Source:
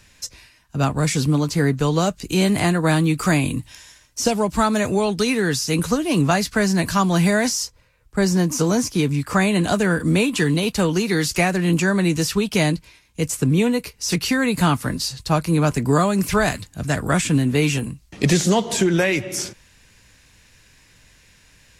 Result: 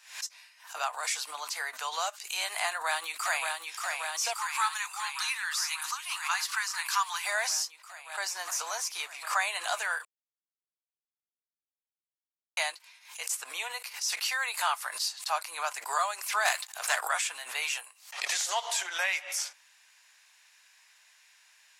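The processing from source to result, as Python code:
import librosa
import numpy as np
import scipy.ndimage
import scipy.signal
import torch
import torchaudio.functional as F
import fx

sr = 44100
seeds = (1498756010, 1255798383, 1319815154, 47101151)

y = fx.echo_throw(x, sr, start_s=2.67, length_s=0.89, ms=580, feedback_pct=80, wet_db=-4.0)
y = fx.ellip_bandstop(y, sr, low_hz=170.0, high_hz=950.0, order=3, stop_db=40, at=(4.33, 7.25))
y = fx.leveller(y, sr, passes=2, at=(16.45, 17.01))
y = fx.edit(y, sr, fx.silence(start_s=10.05, length_s=2.52), tone=tone)
y = scipy.signal.sosfilt(scipy.signal.butter(6, 740.0, 'highpass', fs=sr, output='sos'), y)
y = fx.pre_swell(y, sr, db_per_s=120.0)
y = y * 10.0 ** (-6.0 / 20.0)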